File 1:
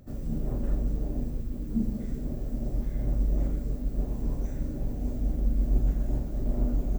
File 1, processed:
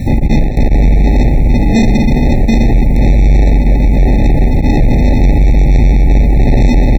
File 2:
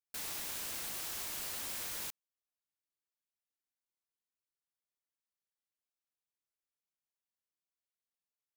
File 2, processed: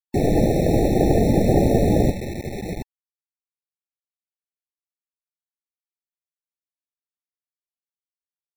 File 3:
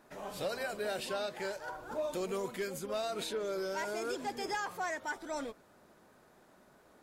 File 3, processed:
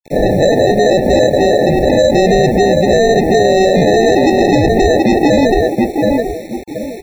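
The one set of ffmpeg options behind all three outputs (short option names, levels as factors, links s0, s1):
-filter_complex "[0:a]lowpass=1600,aecho=1:1:726|1452|2178|2904:0.398|0.127|0.0408|0.013,asplit=2[s0][s1];[s1]acompressor=threshold=0.0224:ratio=10,volume=1[s2];[s0][s2]amix=inputs=2:normalize=0,acrusher=samples=39:mix=1:aa=0.000001,afftdn=nr=21:nf=-44,aresample=16000,asoftclip=type=hard:threshold=0.0531,aresample=44100,acrusher=bits=9:mix=0:aa=0.000001,alimiter=level_in=42.2:limit=0.891:release=50:level=0:latency=1,afftfilt=real='re*eq(mod(floor(b*sr/1024/880),2),0)':imag='im*eq(mod(floor(b*sr/1024/880),2),0)':win_size=1024:overlap=0.75,volume=0.708"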